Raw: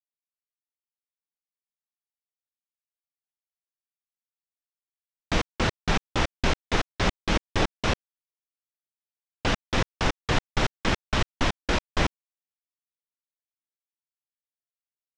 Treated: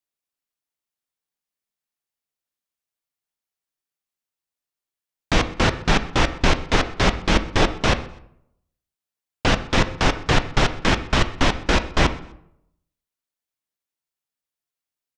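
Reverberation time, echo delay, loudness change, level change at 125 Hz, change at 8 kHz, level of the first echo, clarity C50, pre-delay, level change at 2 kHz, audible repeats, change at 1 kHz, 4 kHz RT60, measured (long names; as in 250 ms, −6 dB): 0.70 s, 126 ms, +6.5 dB, +6.5 dB, +6.0 dB, −23.0 dB, 13.5 dB, 6 ms, +6.5 dB, 2, +6.5 dB, 0.55 s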